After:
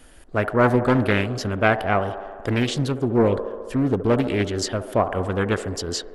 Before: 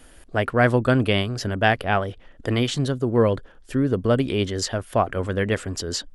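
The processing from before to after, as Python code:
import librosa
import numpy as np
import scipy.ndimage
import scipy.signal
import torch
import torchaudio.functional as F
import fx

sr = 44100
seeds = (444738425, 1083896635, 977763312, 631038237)

y = fx.echo_wet_bandpass(x, sr, ms=69, feedback_pct=78, hz=600.0, wet_db=-10.5)
y = fx.doppler_dist(y, sr, depth_ms=0.49)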